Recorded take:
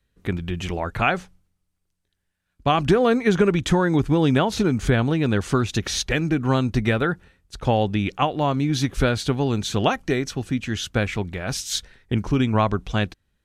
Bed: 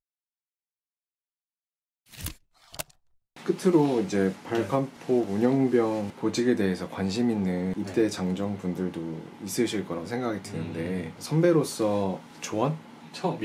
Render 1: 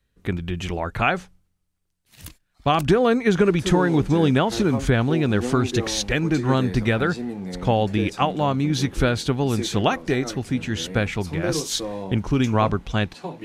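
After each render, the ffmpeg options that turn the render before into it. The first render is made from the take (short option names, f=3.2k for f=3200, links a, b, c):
-filter_complex "[1:a]volume=-5dB[a];[0:a][a]amix=inputs=2:normalize=0"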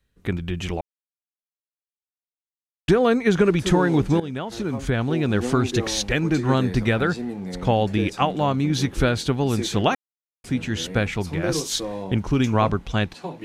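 -filter_complex "[0:a]asplit=6[a][b][c][d][e][f];[a]atrim=end=0.81,asetpts=PTS-STARTPTS,afade=t=out:st=0.806:d=0.004:c=hsin[g];[b]atrim=start=0.81:end=2.88,asetpts=PTS-STARTPTS,volume=0[h];[c]atrim=start=2.88:end=4.2,asetpts=PTS-STARTPTS,afade=t=in:d=0.004:c=hsin,afade=t=out:st=1.316:d=0.004:c=hsin:silence=0.16788[i];[d]atrim=start=4.2:end=9.95,asetpts=PTS-STARTPTS,afade=t=in:d=1.26:silence=0.16788,afade=t=out:st=5.746:d=0.004:c=hsin[j];[e]atrim=start=9.95:end=10.44,asetpts=PTS-STARTPTS,volume=0[k];[f]atrim=start=10.44,asetpts=PTS-STARTPTS,afade=t=in:d=0.004:c=hsin[l];[g][h][i][j][k][l]concat=n=6:v=0:a=1"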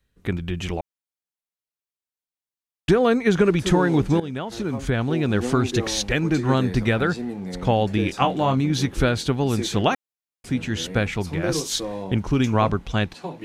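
-filter_complex "[0:a]asettb=1/sr,asplit=3[a][b][c];[a]atrim=end=8.064[d];[b]atrim=start=8.06:end=8.61,asetpts=PTS-STARTPTS,afade=t=in:d=0.004:c=qsin,afade=t=out:st=0.546:d=0.004:c=qsin,asplit=2[e][f];[f]adelay=23,volume=-6dB[g];[e][g]amix=inputs=2:normalize=0,atrim=end_sample=24255[h];[c]atrim=start=8.606[i];[d][h]acrossfade=d=0.004:c1=hsin:c2=qsin[j];[j][i]acrossfade=d=0.004:c1=qsin:c2=hsin"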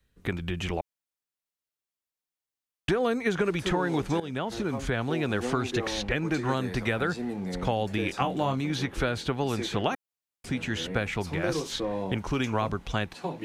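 -filter_complex "[0:a]acrossover=split=450|3300|6900[a][b][c][d];[a]acompressor=threshold=-30dB:ratio=4[e];[b]acompressor=threshold=-27dB:ratio=4[f];[c]acompressor=threshold=-47dB:ratio=4[g];[d]acompressor=threshold=-52dB:ratio=4[h];[e][f][g][h]amix=inputs=4:normalize=0"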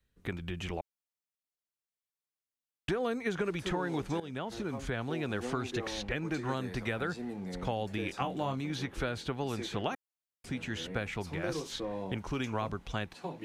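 -af "volume=-6.5dB"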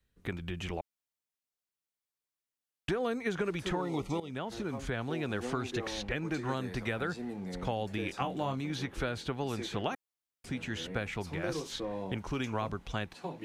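-filter_complex "[0:a]asettb=1/sr,asplit=3[a][b][c];[a]atrim=end=3.814[d];[b]atrim=start=3.81:end=4.3,asetpts=PTS-STARTPTS,afade=t=in:d=0.004:c=qsin,afade=t=out:st=0.486:d=0.004:c=qsin,asuperstop=centerf=1600:order=8:qfactor=3.3[e];[c]atrim=start=4.296[f];[d][e]acrossfade=d=0.004:c1=hsin:c2=qsin[g];[g][f]acrossfade=d=0.004:c1=qsin:c2=hsin"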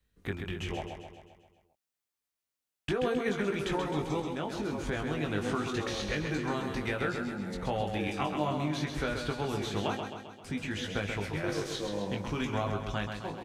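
-filter_complex "[0:a]asplit=2[a][b];[b]adelay=20,volume=-5dB[c];[a][c]amix=inputs=2:normalize=0,aecho=1:1:132|264|396|528|660|792|924:0.501|0.281|0.157|0.088|0.0493|0.0276|0.0155"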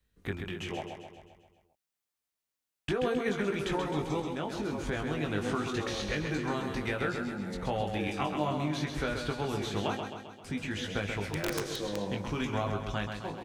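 -filter_complex "[0:a]asettb=1/sr,asplit=3[a][b][c];[a]atrim=end=0.484[d];[b]atrim=start=0.48:end=1.16,asetpts=PTS-STARTPTS,afade=t=in:d=0.004:c=qsin,afade=t=out:st=0.676:d=0.004:c=qsin,highpass=120[e];[c]atrim=start=1.156[f];[d][e]acrossfade=d=0.004:c1=hsin:c2=qsin[g];[g][f]acrossfade=d=0.004:c1=qsin:c2=hsin,asettb=1/sr,asplit=3[h][i][j];[h]atrim=end=11.244[k];[i]atrim=start=11.24:end=11.96,asetpts=PTS-STARTPTS,afade=t=in:d=0.004:c=qsin,afade=t=out:st=0.716:d=0.004:c=qsin,aeval=exprs='(mod(15*val(0)+1,2)-1)/15':c=same[l];[j]atrim=start=11.956[m];[k][l]acrossfade=d=0.004:c1=hsin:c2=qsin[n];[n][m]acrossfade=d=0.004:c1=qsin:c2=hsin"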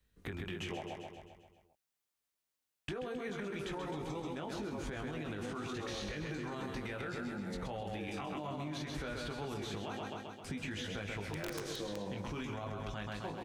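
-af "alimiter=level_in=3dB:limit=-24dB:level=0:latency=1,volume=-3dB,acompressor=threshold=-37dB:ratio=6"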